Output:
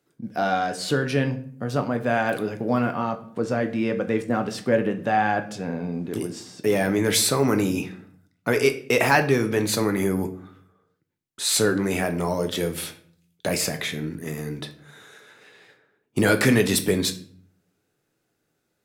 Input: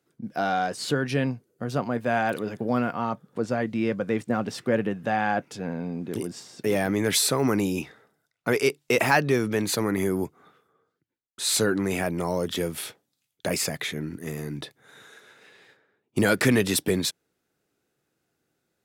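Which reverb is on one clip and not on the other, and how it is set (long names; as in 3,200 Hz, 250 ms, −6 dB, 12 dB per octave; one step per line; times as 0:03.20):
rectangular room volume 67 cubic metres, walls mixed, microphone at 0.32 metres
level +1.5 dB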